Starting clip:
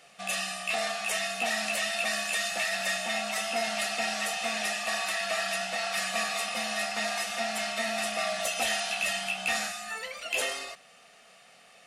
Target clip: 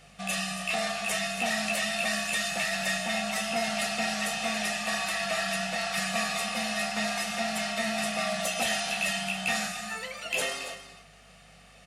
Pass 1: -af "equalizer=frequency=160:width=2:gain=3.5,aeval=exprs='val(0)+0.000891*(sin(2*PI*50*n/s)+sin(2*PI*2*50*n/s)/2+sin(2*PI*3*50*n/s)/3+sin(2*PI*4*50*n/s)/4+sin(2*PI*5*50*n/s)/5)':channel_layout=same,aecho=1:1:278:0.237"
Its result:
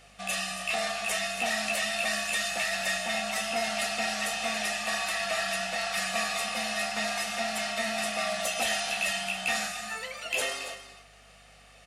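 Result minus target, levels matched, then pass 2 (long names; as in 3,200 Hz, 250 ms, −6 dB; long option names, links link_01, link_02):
125 Hz band −6.5 dB
-af "equalizer=frequency=160:width=2:gain=15.5,aeval=exprs='val(0)+0.000891*(sin(2*PI*50*n/s)+sin(2*PI*2*50*n/s)/2+sin(2*PI*3*50*n/s)/3+sin(2*PI*4*50*n/s)/4+sin(2*PI*5*50*n/s)/5)':channel_layout=same,aecho=1:1:278:0.237"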